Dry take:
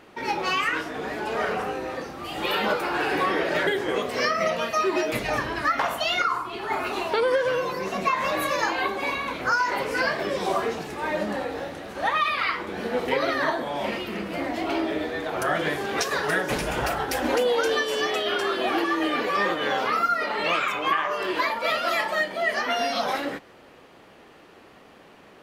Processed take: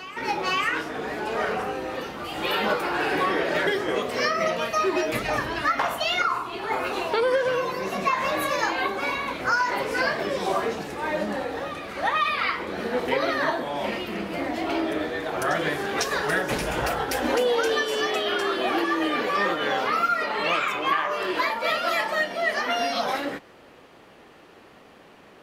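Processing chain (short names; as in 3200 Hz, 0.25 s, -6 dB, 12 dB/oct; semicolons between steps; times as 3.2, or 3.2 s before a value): on a send: reverse echo 0.5 s -14.5 dB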